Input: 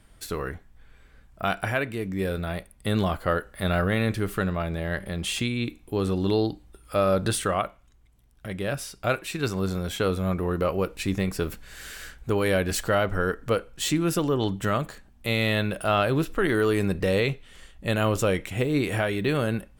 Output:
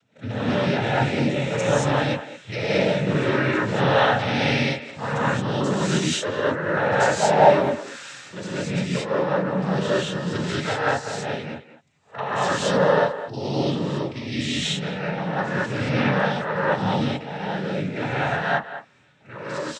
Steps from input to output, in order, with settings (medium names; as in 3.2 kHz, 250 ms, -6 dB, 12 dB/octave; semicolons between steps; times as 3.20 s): reverse the whole clip; comb 1.5 ms, depth 47%; noise-vocoded speech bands 12; time-frequency box 7.05–7.39 s, 580–1200 Hz +11 dB; speakerphone echo 210 ms, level -12 dB; gated-style reverb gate 250 ms rising, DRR -8 dB; trim -5.5 dB